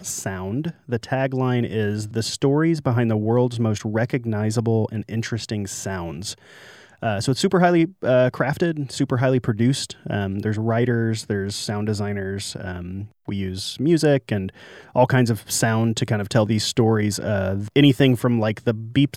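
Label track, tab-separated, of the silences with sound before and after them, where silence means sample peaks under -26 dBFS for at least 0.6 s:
6.320000	7.030000	silence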